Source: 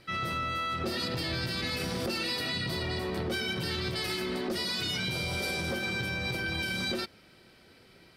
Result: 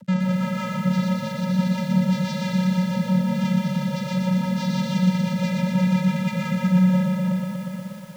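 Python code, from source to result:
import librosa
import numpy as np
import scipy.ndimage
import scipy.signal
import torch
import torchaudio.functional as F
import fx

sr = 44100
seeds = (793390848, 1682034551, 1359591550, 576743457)

p1 = fx.low_shelf(x, sr, hz=380.0, db=10.0)
p2 = fx.over_compress(p1, sr, threshold_db=-35.0, ratio=-1.0)
p3 = p1 + (p2 * librosa.db_to_amplitude(-1.0))
p4 = fx.dmg_buzz(p3, sr, base_hz=400.0, harmonics=25, level_db=-41.0, tilt_db=-6, odd_only=False)
p5 = fx.filter_sweep_lowpass(p4, sr, from_hz=5200.0, to_hz=280.0, start_s=5.97, end_s=7.49, q=2.3)
p6 = fx.schmitt(p5, sr, flips_db=-29.5)
p7 = fx.vocoder(p6, sr, bands=16, carrier='square', carrier_hz=185.0)
p8 = fx.dmg_crackle(p7, sr, seeds[0], per_s=180.0, level_db=-54.0)
p9 = fx.rotary(p8, sr, hz=6.0)
p10 = p9 + fx.echo_diffused(p9, sr, ms=473, feedback_pct=61, wet_db=-11.5, dry=0)
p11 = fx.echo_crushed(p10, sr, ms=120, feedback_pct=80, bits=9, wet_db=-4)
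y = p11 * librosa.db_to_amplitude(6.0)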